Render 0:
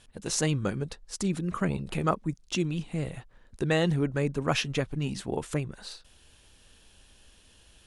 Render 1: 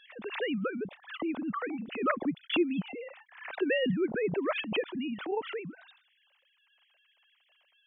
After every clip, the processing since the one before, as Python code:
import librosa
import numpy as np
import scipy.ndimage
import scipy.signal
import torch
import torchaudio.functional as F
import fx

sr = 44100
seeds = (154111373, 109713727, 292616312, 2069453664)

y = fx.sine_speech(x, sr)
y = fx.pre_swell(y, sr, db_per_s=100.0)
y = y * librosa.db_to_amplitude(-3.5)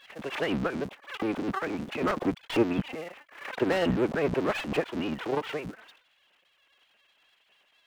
y = fx.cycle_switch(x, sr, every=3, mode='muted')
y = fx.slew_limit(y, sr, full_power_hz=45.0)
y = y * librosa.db_to_amplitude(5.0)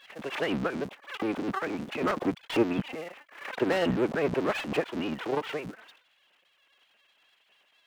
y = fx.low_shelf(x, sr, hz=73.0, db=-9.5)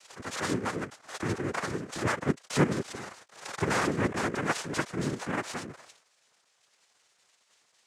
y = x + 0.65 * np.pad(x, (int(3.3 * sr / 1000.0), 0))[:len(x)]
y = fx.noise_vocoder(y, sr, seeds[0], bands=3)
y = y * librosa.db_to_amplitude(-3.0)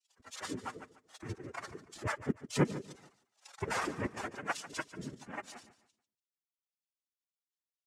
y = fx.bin_expand(x, sr, power=2.0)
y = fx.echo_feedback(y, sr, ms=145, feedback_pct=31, wet_db=-15.0)
y = y * librosa.db_to_amplitude(-2.5)